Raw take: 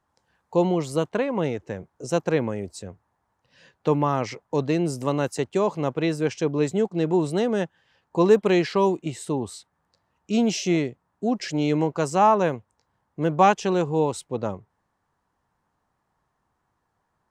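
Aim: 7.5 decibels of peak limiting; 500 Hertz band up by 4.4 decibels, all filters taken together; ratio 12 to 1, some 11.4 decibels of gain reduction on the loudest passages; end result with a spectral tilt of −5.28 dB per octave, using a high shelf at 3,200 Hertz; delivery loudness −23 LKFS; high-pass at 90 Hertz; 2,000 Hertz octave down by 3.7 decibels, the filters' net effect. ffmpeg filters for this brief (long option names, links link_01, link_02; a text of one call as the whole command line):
ffmpeg -i in.wav -af "highpass=90,equalizer=frequency=500:width_type=o:gain=5.5,equalizer=frequency=2000:width_type=o:gain=-8,highshelf=frequency=3200:gain=7,acompressor=threshold=-18dB:ratio=12,volume=4dB,alimiter=limit=-12dB:level=0:latency=1" out.wav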